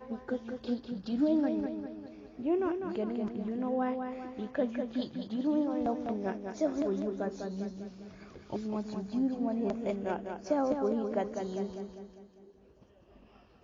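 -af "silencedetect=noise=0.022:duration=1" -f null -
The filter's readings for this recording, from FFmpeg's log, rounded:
silence_start: 11.84
silence_end: 13.63 | silence_duration: 1.79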